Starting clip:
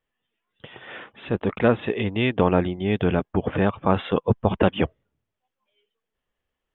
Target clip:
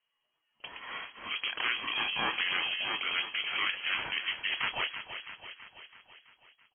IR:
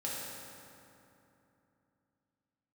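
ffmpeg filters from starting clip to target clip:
-filter_complex "[0:a]afftfilt=real='re*lt(hypot(re,im),0.316)':imag='im*lt(hypot(re,im),0.316)':win_size=1024:overlap=0.75,asplit=2[link_01][link_02];[link_02]asoftclip=type=tanh:threshold=-28dB,volume=-3.5dB[link_03];[link_01][link_03]amix=inputs=2:normalize=0,asplit=2[link_04][link_05];[link_05]adelay=27,volume=-11dB[link_06];[link_04][link_06]amix=inputs=2:normalize=0,asplit=2[link_07][link_08];[link_08]aecho=0:1:330|660|990|1320|1650|1980|2310:0.316|0.183|0.106|0.0617|0.0358|0.0208|0.012[link_09];[link_07][link_09]amix=inputs=2:normalize=0,aeval=exprs='val(0)*sin(2*PI*420*n/s)':channel_layout=same,lowpass=frequency=2800:width_type=q:width=0.5098,lowpass=frequency=2800:width_type=q:width=0.6013,lowpass=frequency=2800:width_type=q:width=0.9,lowpass=frequency=2800:width_type=q:width=2.563,afreqshift=-3300,volume=-2.5dB"

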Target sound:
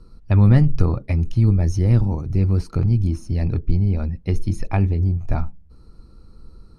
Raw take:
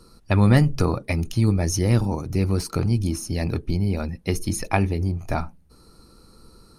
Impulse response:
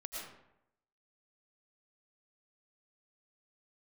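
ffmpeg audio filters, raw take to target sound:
-af "aemphasis=mode=reproduction:type=bsi,volume=-5dB"

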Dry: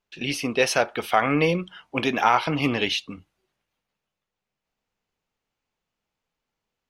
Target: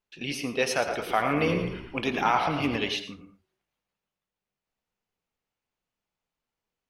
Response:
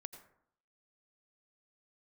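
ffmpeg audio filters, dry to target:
-filter_complex "[0:a]asettb=1/sr,asplit=3[link_01][link_02][link_03];[link_01]atrim=end=0.714[link_04];[link_02]atrim=start=0.71:end=2.76,asetpts=PTS-STARTPTS,afade=type=in:duration=0.004:curve=qsin,afade=type=out:start_time=2.046:duration=0.004:curve=qsin,asplit=7[link_05][link_06][link_07][link_08][link_09][link_10][link_11];[link_06]adelay=112,afreqshift=-56,volume=-9dB[link_12];[link_07]adelay=224,afreqshift=-112,volume=-15dB[link_13];[link_08]adelay=336,afreqshift=-168,volume=-21dB[link_14];[link_09]adelay=448,afreqshift=-224,volume=-27.1dB[link_15];[link_10]adelay=560,afreqshift=-280,volume=-33.1dB[link_16];[link_11]adelay=672,afreqshift=-336,volume=-39.1dB[link_17];[link_05][link_12][link_13][link_14][link_15][link_16][link_17]amix=inputs=7:normalize=0,atrim=end_sample=90405[link_18];[link_03]atrim=start=2.756[link_19];[link_04][link_18]acrossfade=duration=0.004:curve1=hsin:curve2=qsin[link_20];[link_20][link_19]acrossfade=duration=0.004:curve1=qsin:curve2=hsin[link_21];[1:a]atrim=start_sample=2205,afade=type=out:start_time=0.28:duration=0.01,atrim=end_sample=12789[link_22];[link_21][link_22]afir=irnorm=-1:irlink=0"

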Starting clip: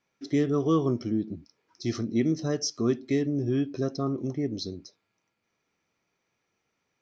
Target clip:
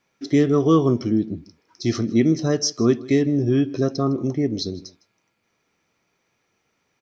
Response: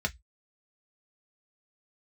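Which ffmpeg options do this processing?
-af "aecho=1:1:158:0.0841,volume=7.5dB"

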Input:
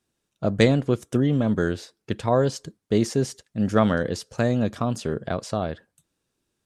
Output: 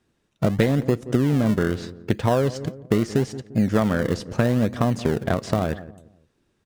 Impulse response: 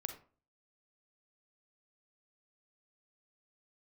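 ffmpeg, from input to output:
-filter_complex "[0:a]lowpass=frequency=2800:poles=1,asplit=2[link_01][link_02];[link_02]acrusher=samples=37:mix=1:aa=0.000001:lfo=1:lforange=37:lforate=0.78,volume=-9.5dB[link_03];[link_01][link_03]amix=inputs=2:normalize=0,equalizer=frequency=1900:width_type=o:width=0.34:gain=3,asplit=2[link_04][link_05];[link_05]adelay=173,lowpass=frequency=810:poles=1,volume=-19dB,asplit=2[link_06][link_07];[link_07]adelay=173,lowpass=frequency=810:poles=1,volume=0.35,asplit=2[link_08][link_09];[link_09]adelay=173,lowpass=frequency=810:poles=1,volume=0.35[link_10];[link_04][link_06][link_08][link_10]amix=inputs=4:normalize=0,acompressor=threshold=-25dB:ratio=5,volume=8dB"

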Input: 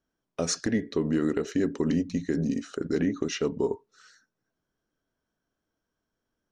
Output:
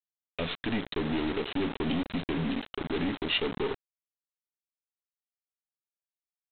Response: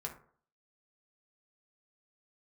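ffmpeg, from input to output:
-af "equalizer=frequency=2300:width=3.7:gain=-3.5,aeval=exprs='(tanh(20*val(0)+0.35)-tanh(0.35))/20':channel_layout=same,aexciter=amount=5.1:drive=4.8:freq=2200,aresample=8000,acrusher=bits=5:mix=0:aa=0.000001,aresample=44100"

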